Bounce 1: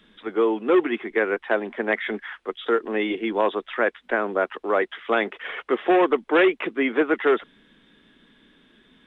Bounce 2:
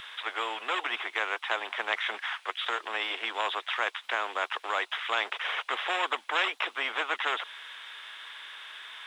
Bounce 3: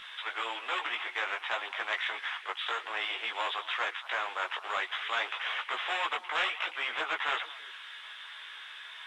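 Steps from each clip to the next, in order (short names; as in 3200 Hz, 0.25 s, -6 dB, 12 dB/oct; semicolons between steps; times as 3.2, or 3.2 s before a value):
HPF 890 Hz 24 dB/oct; dynamic EQ 1900 Hz, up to -6 dB, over -38 dBFS, Q 1.8; spectral compressor 2:1; gain -1.5 dB
delay with a stepping band-pass 0.113 s, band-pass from 2600 Hz, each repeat -1.4 oct, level -11.5 dB; chorus voices 4, 0.51 Hz, delay 17 ms, depth 4.8 ms; overdrive pedal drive 7 dB, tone 7300 Hz, clips at -15 dBFS; gain -2 dB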